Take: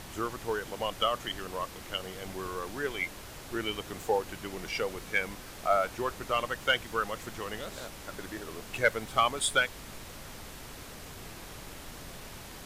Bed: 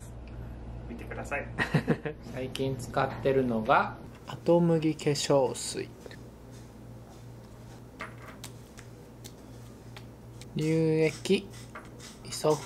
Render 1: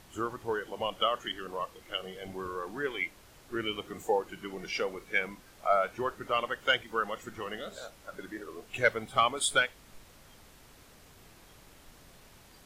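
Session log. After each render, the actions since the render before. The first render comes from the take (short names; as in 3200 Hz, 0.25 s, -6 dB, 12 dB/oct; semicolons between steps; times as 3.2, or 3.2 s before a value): noise print and reduce 11 dB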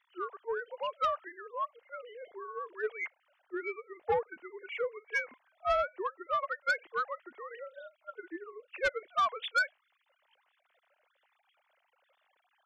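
sine-wave speech; soft clip -22.5 dBFS, distortion -11 dB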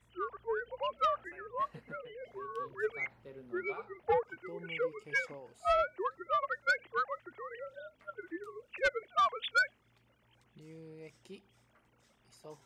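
add bed -25 dB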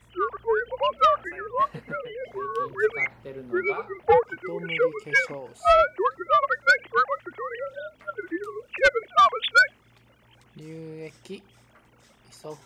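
gain +11.5 dB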